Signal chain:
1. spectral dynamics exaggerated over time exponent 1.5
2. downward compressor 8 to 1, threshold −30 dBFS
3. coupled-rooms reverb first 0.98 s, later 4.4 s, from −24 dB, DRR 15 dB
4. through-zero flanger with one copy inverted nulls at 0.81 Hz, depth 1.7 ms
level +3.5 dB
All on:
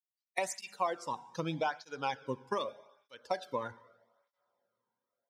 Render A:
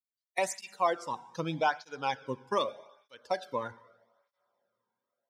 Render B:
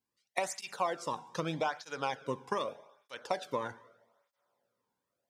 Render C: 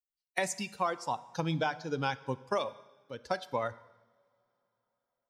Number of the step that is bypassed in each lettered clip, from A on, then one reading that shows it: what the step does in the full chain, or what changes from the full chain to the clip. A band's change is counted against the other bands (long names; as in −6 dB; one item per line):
2, average gain reduction 2.0 dB
1, change in momentary loudness spread +4 LU
4, 125 Hz band +4.0 dB